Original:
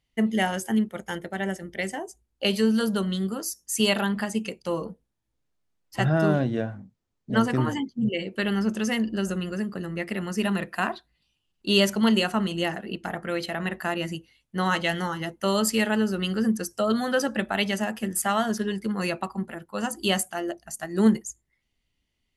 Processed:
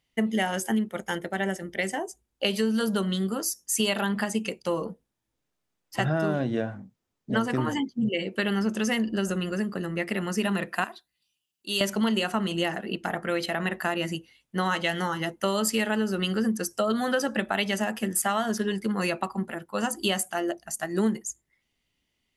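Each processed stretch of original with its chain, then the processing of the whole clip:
0:10.84–0:11.81: high-pass filter 68 Hz + first-order pre-emphasis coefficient 0.8
whole clip: low-shelf EQ 96 Hz −11 dB; notch filter 4,300 Hz, Q 26; downward compressor 4 to 1, threshold −25 dBFS; level +3 dB

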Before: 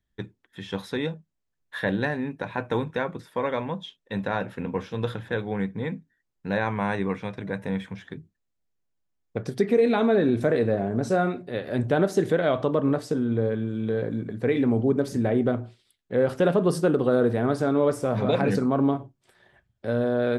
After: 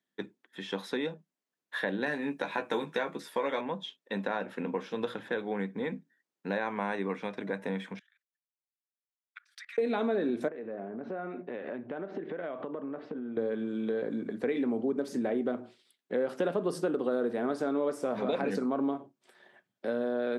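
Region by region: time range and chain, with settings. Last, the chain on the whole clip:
0:02.06–0:03.61: high-shelf EQ 3,100 Hz +9 dB + double-tracking delay 14 ms −5 dB
0:07.99–0:09.78: Butterworth high-pass 1,300 Hz 48 dB per octave + high-shelf EQ 7,900 Hz −8 dB + output level in coarse steps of 23 dB
0:10.48–0:13.37: low-pass filter 2,700 Hz 24 dB per octave + downward compressor 12 to 1, threshold −32 dBFS
whole clip: high-pass filter 210 Hz 24 dB per octave; high-shelf EQ 7,600 Hz −4.5 dB; downward compressor 2.5 to 1, threshold −30 dBFS

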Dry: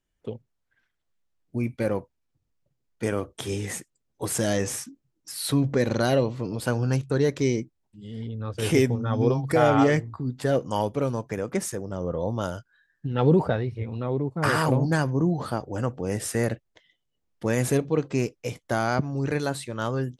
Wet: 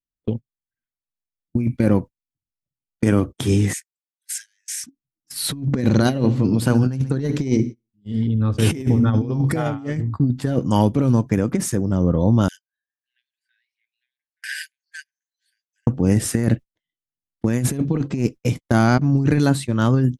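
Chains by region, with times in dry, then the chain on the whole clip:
0:03.73–0:04.84: downward compressor 4 to 1, threshold −28 dBFS + Chebyshev high-pass with heavy ripple 1,500 Hz, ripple 3 dB
0:05.86–0:09.76: mains-hum notches 60/120/180/240/300/360/420 Hz + repeating echo 68 ms, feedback 47%, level −19 dB
0:12.48–0:15.87: downward compressor 10 to 1, threshold −23 dBFS + linear-phase brick-wall high-pass 1,500 Hz
whole clip: noise gate −37 dBFS, range −31 dB; low shelf with overshoot 360 Hz +7.5 dB, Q 1.5; compressor whose output falls as the input rises −20 dBFS, ratio −0.5; level +3.5 dB

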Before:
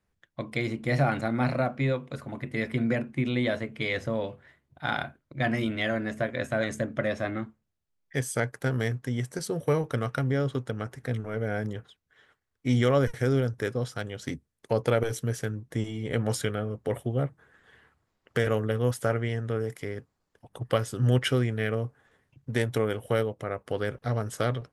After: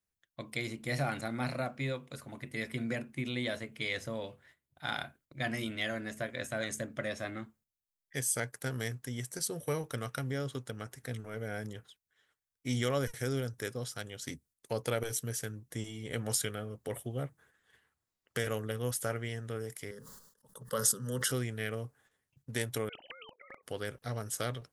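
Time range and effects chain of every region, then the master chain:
0:19.91–0:21.32: phaser with its sweep stopped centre 480 Hz, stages 8 + level that may fall only so fast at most 60 dB per second
0:22.89–0:23.63: three sine waves on the formant tracks + output level in coarse steps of 16 dB + every bin compressed towards the loudest bin 4 to 1
whole clip: noise gate −56 dBFS, range −7 dB; first-order pre-emphasis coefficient 0.8; level +4.5 dB

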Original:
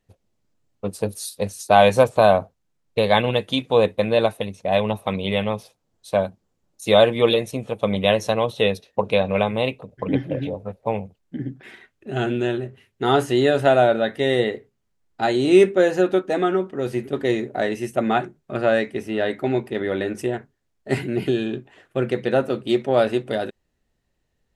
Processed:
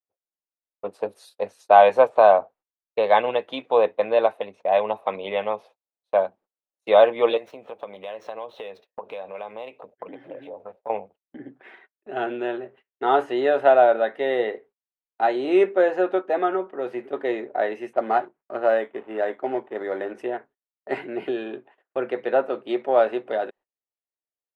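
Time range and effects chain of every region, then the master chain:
0:07.37–0:10.90: running median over 5 samples + high-shelf EQ 5,200 Hz +10.5 dB + downward compressor 5 to 1, threshold −30 dBFS
0:17.93–0:20.12: mu-law and A-law mismatch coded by A + linearly interpolated sample-rate reduction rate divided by 8×
whole clip: three-way crossover with the lows and the highs turned down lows −22 dB, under 290 Hz, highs −19 dB, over 3,300 Hz; noise gate −48 dBFS, range −25 dB; parametric band 810 Hz +7.5 dB 1.7 octaves; level −5 dB

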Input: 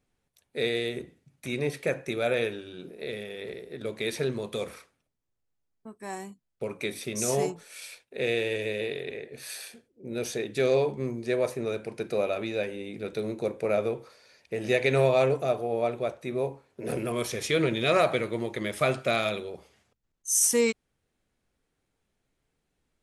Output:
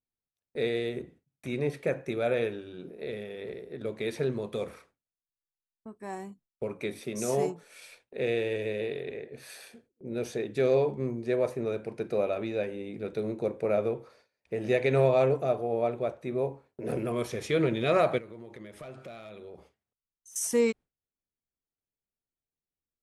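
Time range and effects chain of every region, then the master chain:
0:07.01–0:07.63: high-pass filter 130 Hz + high-shelf EQ 8,900 Hz +4.5 dB + one half of a high-frequency compander decoder only
0:18.18–0:20.36: hard clipping −20.5 dBFS + downward compressor, threshold −41 dBFS
whole clip: noise gate with hold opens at −43 dBFS; high-shelf EQ 2,100 Hz −10 dB

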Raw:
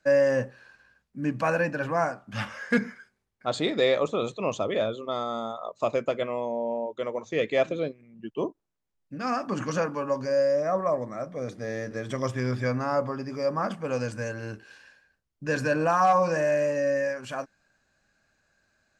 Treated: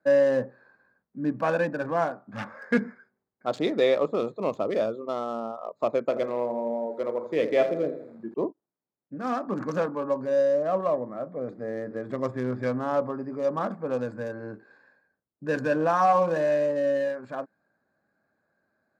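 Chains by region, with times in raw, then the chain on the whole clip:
0:06.04–0:08.34: double-tracking delay 35 ms −10 dB + feedback echo at a low word length 82 ms, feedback 55%, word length 8 bits, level −10 dB
whole clip: adaptive Wiener filter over 15 samples; high-pass filter 220 Hz 12 dB per octave; spectral tilt −1.5 dB per octave

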